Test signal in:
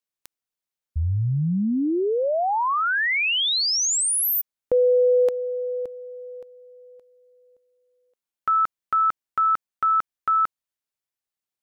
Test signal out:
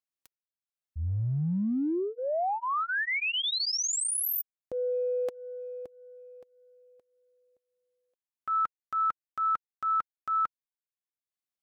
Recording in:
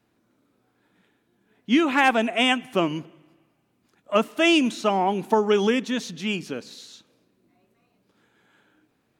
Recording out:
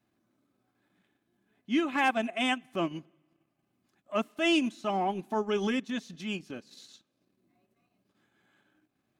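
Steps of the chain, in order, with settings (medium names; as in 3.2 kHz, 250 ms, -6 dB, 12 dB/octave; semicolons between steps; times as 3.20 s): comb of notches 470 Hz; transient shaper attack -5 dB, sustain -9 dB; trim -5.5 dB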